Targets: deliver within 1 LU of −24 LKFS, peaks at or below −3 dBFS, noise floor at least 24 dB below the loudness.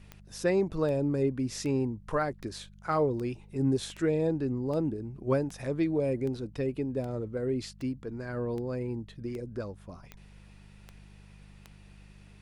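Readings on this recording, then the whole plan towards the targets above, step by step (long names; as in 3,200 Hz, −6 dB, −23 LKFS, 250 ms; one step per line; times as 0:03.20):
number of clicks 16; mains hum 50 Hz; hum harmonics up to 200 Hz; level of the hum −51 dBFS; integrated loudness −31.5 LKFS; sample peak −15.0 dBFS; target loudness −24.0 LKFS
→ click removal
hum removal 50 Hz, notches 4
level +7.5 dB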